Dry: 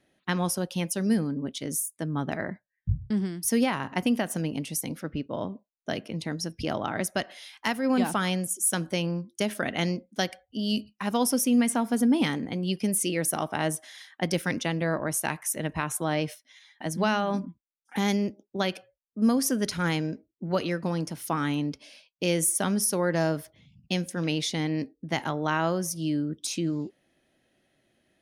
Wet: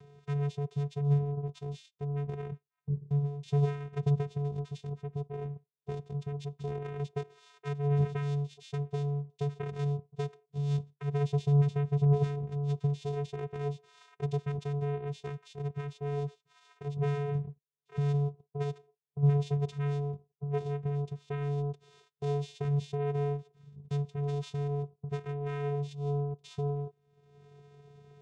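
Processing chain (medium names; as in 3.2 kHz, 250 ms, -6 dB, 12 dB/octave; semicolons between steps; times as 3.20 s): upward compressor, threshold -31 dBFS; vocoder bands 4, square 143 Hz; small resonant body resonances 380/3600 Hz, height 9 dB, ringing for 30 ms; trim -4 dB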